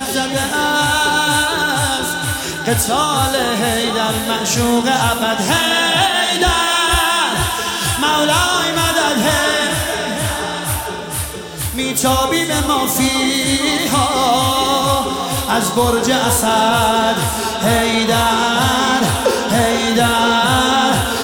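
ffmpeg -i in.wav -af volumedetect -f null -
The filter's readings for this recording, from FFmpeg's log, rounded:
mean_volume: -15.7 dB
max_volume: -3.3 dB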